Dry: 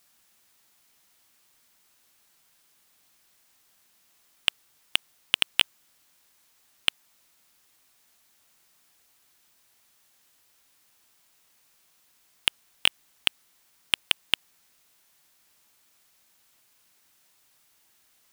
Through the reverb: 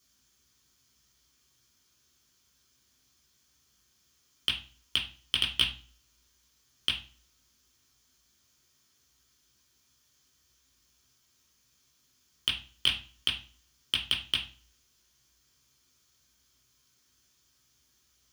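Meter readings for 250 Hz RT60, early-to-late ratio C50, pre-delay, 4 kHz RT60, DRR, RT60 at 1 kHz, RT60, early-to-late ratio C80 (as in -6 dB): 0.50 s, 9.5 dB, 3 ms, 0.35 s, -3.5 dB, 0.40 s, 0.40 s, 15.0 dB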